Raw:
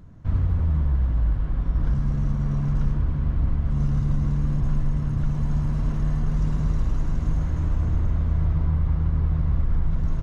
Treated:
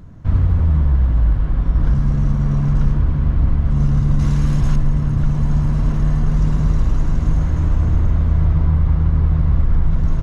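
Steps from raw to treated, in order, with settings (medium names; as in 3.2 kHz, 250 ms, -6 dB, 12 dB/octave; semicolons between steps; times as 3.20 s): 4.19–4.76 s: treble shelf 2 kHz +11 dB; trim +7 dB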